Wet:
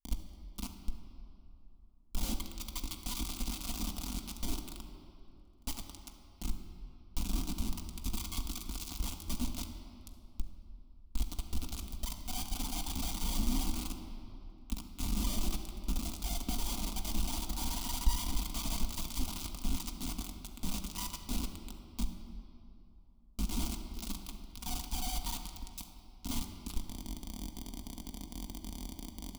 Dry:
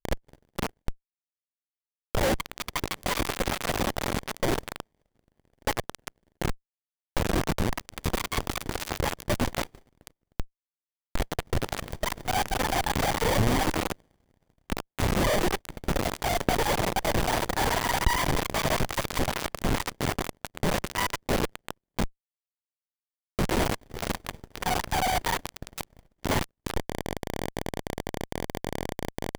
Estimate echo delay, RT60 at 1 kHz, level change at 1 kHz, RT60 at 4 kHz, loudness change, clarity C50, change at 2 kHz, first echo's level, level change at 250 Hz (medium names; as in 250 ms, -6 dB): no echo, 2.8 s, -18.0 dB, 1.9 s, -10.5 dB, 7.0 dB, -20.5 dB, no echo, -9.0 dB